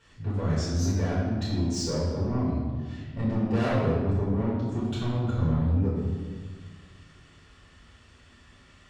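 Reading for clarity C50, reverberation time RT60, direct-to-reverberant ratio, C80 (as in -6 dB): -0.5 dB, 1.5 s, -9.5 dB, 1.5 dB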